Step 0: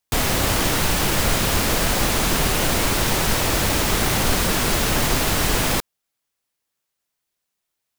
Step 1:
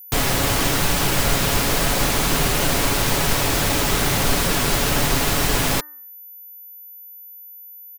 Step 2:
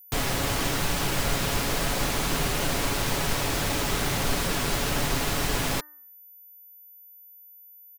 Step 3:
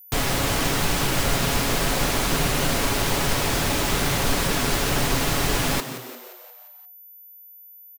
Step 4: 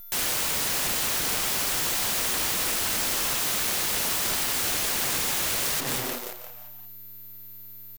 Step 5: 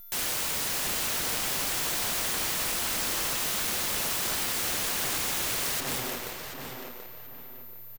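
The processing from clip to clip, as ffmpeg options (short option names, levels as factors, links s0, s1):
-af "aecho=1:1:7.1:0.35,bandreject=f=301.7:t=h:w=4,bandreject=f=603.4:t=h:w=4,bandreject=f=905.1:t=h:w=4,bandreject=f=1206.8:t=h:w=4,bandreject=f=1508.5:t=h:w=4,bandreject=f=1810.2:t=h:w=4,aeval=exprs='val(0)+0.0126*sin(2*PI*14000*n/s)':c=same"
-af "highshelf=f=9800:g=-4,volume=0.473"
-filter_complex "[0:a]asplit=7[s0][s1][s2][s3][s4][s5][s6];[s1]adelay=175,afreqshift=120,volume=0.251[s7];[s2]adelay=350,afreqshift=240,volume=0.133[s8];[s3]adelay=525,afreqshift=360,volume=0.0708[s9];[s4]adelay=700,afreqshift=480,volume=0.0376[s10];[s5]adelay=875,afreqshift=600,volume=0.0197[s11];[s6]adelay=1050,afreqshift=720,volume=0.0105[s12];[s0][s7][s8][s9][s10][s11][s12]amix=inputs=7:normalize=0,volume=1.5"
-af "acompressor=threshold=0.0501:ratio=12,aeval=exprs='(mod(29.9*val(0)+1,2)-1)/29.9':c=same,acrusher=bits=7:dc=4:mix=0:aa=0.000001,volume=2.24"
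-filter_complex "[0:a]asplit=2[s0][s1];[s1]adelay=732,lowpass=f=3000:p=1,volume=0.562,asplit=2[s2][s3];[s3]adelay=732,lowpass=f=3000:p=1,volume=0.29,asplit=2[s4][s5];[s5]adelay=732,lowpass=f=3000:p=1,volume=0.29,asplit=2[s6][s7];[s7]adelay=732,lowpass=f=3000:p=1,volume=0.29[s8];[s0][s2][s4][s6][s8]amix=inputs=5:normalize=0,volume=0.668"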